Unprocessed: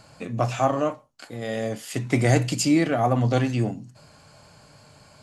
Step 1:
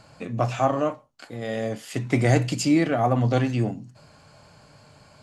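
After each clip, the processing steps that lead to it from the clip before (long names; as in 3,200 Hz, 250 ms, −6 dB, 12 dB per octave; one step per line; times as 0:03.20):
high-shelf EQ 6,500 Hz −7 dB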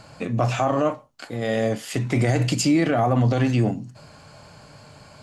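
brickwall limiter −17 dBFS, peak gain reduction 10.5 dB
level +5.5 dB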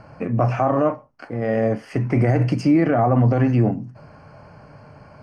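moving average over 12 samples
level +3 dB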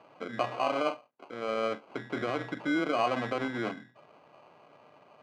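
sample-rate reduction 1,800 Hz, jitter 0%
band-pass filter 380–2,500 Hz
level −8 dB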